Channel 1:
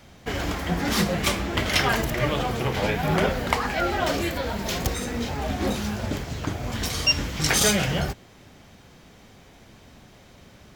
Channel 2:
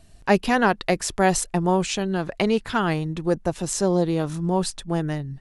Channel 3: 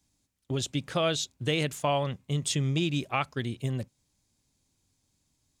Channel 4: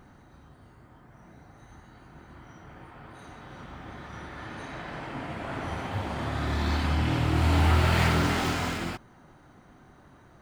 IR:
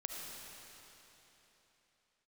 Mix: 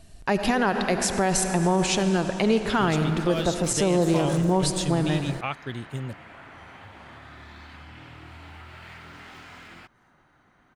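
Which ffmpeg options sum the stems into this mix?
-filter_complex "[0:a]adelay=2400,volume=-19.5dB[a];[1:a]volume=-1dB,asplit=3[b][c][d];[c]volume=-3.5dB[e];[2:a]adelay=2300,volume=-2dB[f];[3:a]equalizer=f=2k:t=o:w=2.3:g=9.5,acompressor=threshold=-32dB:ratio=6,adelay=900,volume=-10.5dB[g];[d]apad=whole_len=580041[h];[a][h]sidechaingate=range=-43dB:threshold=-38dB:ratio=16:detection=peak[i];[4:a]atrim=start_sample=2205[j];[e][j]afir=irnorm=-1:irlink=0[k];[i][b][f][g][k]amix=inputs=5:normalize=0,alimiter=limit=-11.5dB:level=0:latency=1:release=69"

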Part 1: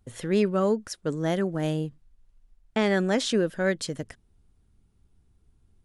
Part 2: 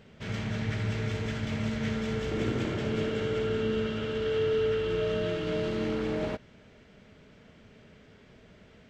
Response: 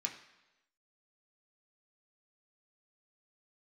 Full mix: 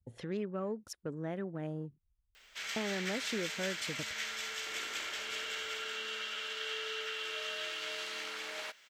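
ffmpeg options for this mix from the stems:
-filter_complex "[0:a]acompressor=threshold=-33dB:ratio=2,afwtdn=0.00355,volume=-6.5dB[a];[1:a]highpass=1.4k,aemphasis=mode=production:type=50fm,adelay=2350,volume=1dB[b];[a][b]amix=inputs=2:normalize=0,highpass=58"

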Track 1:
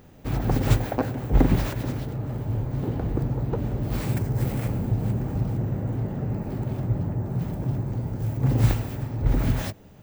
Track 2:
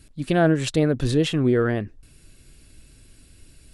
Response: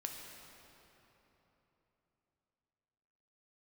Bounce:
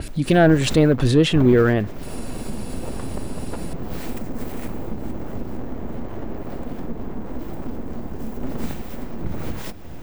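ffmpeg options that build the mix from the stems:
-filter_complex "[0:a]aeval=exprs='abs(val(0))':c=same,volume=-8dB,asplit=2[a][b];[b]volume=-12.5dB[c];[1:a]acontrast=84,volume=-1.5dB[d];[2:a]atrim=start_sample=2205[e];[c][e]afir=irnorm=-1:irlink=0[f];[a][d][f]amix=inputs=3:normalize=0,acompressor=mode=upward:threshold=-17dB:ratio=2.5,adynamicequalizer=threshold=0.0126:dfrequency=4300:dqfactor=0.7:tfrequency=4300:tqfactor=0.7:attack=5:release=100:ratio=0.375:range=2:mode=cutabove:tftype=highshelf"

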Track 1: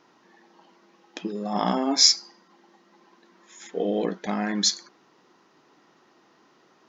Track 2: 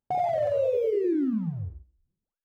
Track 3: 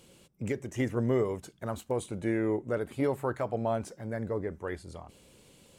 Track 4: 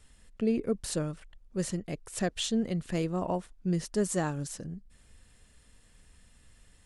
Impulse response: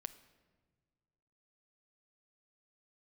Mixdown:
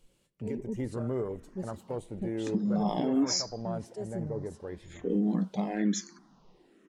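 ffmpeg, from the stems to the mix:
-filter_complex "[0:a]equalizer=f=190:t=o:w=1.9:g=15,asplit=2[a][b];[b]afreqshift=-1.1[c];[a][c]amix=inputs=2:normalize=1,adelay=1300,volume=-5dB[d];[2:a]volume=-5.5dB,asplit=2[e][f];[f]volume=-7.5dB[g];[3:a]aecho=1:1:5.1:0.87,acrossover=split=490[h][i];[h]aeval=exprs='val(0)*(1-1/2+1/2*cos(2*PI*1.4*n/s))':c=same[j];[i]aeval=exprs='val(0)*(1-1/2-1/2*cos(2*PI*1.4*n/s))':c=same[k];[j][k]amix=inputs=2:normalize=0,volume=-6dB,asplit=2[l][m];[m]volume=-15dB[n];[e][l]amix=inputs=2:normalize=0,afwtdn=0.0126,alimiter=level_in=3.5dB:limit=-24dB:level=0:latency=1:release=26,volume=-3.5dB,volume=0dB[o];[4:a]atrim=start_sample=2205[p];[g][n]amix=inputs=2:normalize=0[q];[q][p]afir=irnorm=-1:irlink=0[r];[d][o][r]amix=inputs=3:normalize=0,alimiter=limit=-19dB:level=0:latency=1:release=340"

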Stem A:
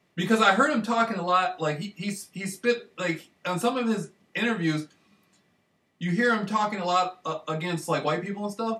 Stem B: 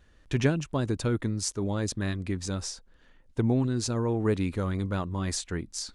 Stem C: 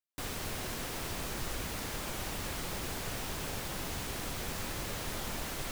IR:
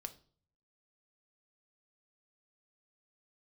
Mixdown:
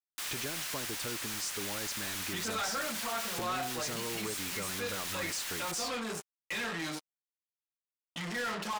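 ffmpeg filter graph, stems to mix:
-filter_complex "[0:a]adelay=2150,volume=-14.5dB,asplit=2[a][b];[b]volume=-10.5dB[c];[1:a]acompressor=threshold=-34dB:ratio=6,volume=-9.5dB,asplit=2[d][e];[2:a]highpass=1.3k,volume=0dB[f];[e]apad=whole_len=252027[g];[f][g]sidechaincompress=threshold=-52dB:ratio=8:attack=16:release=173[h];[a][h]amix=inputs=2:normalize=0,asoftclip=type=tanh:threshold=-37.5dB,alimiter=level_in=21.5dB:limit=-24dB:level=0:latency=1:release=13,volume=-21.5dB,volume=0dB[i];[3:a]atrim=start_sample=2205[j];[c][j]afir=irnorm=-1:irlink=0[k];[d][i][k]amix=inputs=3:normalize=0,highshelf=f=5.3k:g=6.5,acrusher=bits=7:mix=0:aa=0.5,asplit=2[l][m];[m]highpass=f=720:p=1,volume=24dB,asoftclip=type=tanh:threshold=-26.5dB[n];[l][n]amix=inputs=2:normalize=0,lowpass=f=7k:p=1,volume=-6dB"

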